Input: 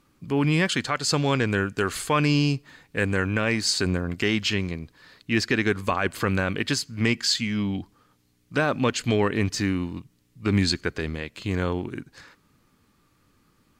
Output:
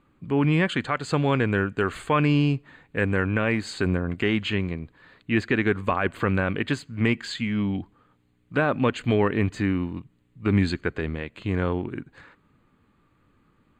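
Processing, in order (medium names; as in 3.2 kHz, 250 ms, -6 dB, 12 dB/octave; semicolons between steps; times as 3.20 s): boxcar filter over 8 samples; trim +1 dB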